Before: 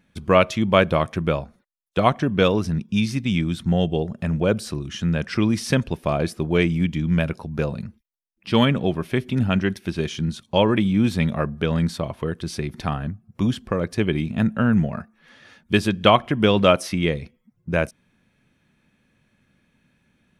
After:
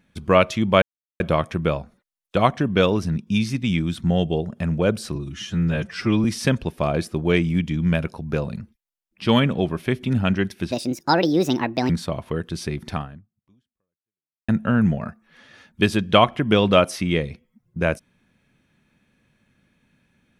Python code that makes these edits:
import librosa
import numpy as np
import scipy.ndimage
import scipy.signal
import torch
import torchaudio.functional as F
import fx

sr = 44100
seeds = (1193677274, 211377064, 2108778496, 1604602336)

y = fx.edit(x, sr, fx.insert_silence(at_s=0.82, length_s=0.38),
    fx.stretch_span(start_s=4.77, length_s=0.73, factor=1.5),
    fx.speed_span(start_s=9.97, length_s=1.84, speed=1.56),
    fx.fade_out_span(start_s=12.85, length_s=1.55, curve='exp'), tone=tone)